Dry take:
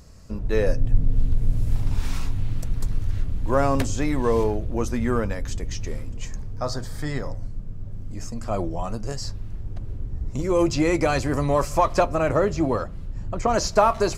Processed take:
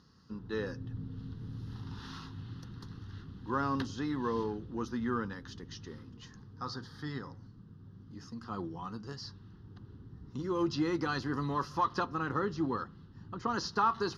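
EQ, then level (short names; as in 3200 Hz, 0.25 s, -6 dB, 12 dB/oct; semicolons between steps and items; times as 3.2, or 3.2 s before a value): BPF 170–5700 Hz; fixed phaser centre 2300 Hz, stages 6; -5.5 dB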